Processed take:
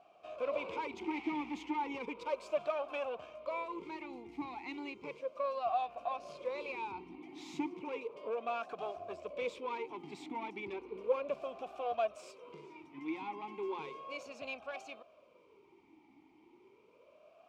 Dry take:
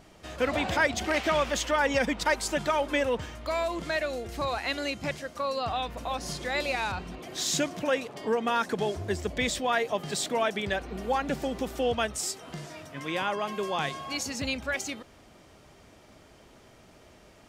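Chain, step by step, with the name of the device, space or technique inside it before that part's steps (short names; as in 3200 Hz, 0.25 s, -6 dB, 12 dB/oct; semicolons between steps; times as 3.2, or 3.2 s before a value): talk box (tube stage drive 25 dB, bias 0.55; vowel sweep a-u 0.34 Hz); gain +5 dB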